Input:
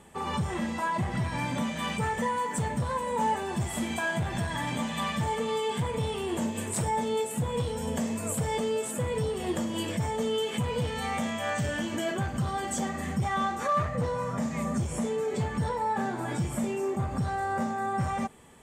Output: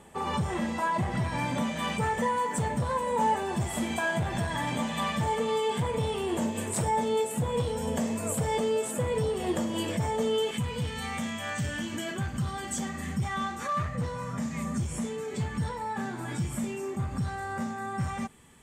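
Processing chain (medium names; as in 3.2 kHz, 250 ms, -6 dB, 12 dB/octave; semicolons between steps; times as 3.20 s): peaking EQ 600 Hz +2.5 dB 1.6 oct, from 10.51 s -8 dB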